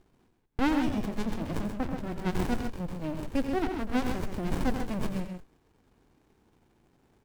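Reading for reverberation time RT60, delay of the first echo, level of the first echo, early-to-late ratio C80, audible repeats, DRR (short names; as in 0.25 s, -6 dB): none, 88 ms, -10.5 dB, none, 2, none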